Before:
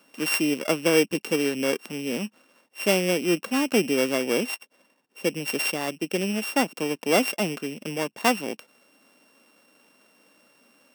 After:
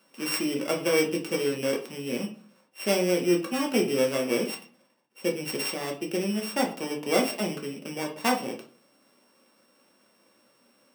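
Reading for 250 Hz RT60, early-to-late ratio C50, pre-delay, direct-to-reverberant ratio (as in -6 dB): 0.60 s, 11.0 dB, 5 ms, 0.5 dB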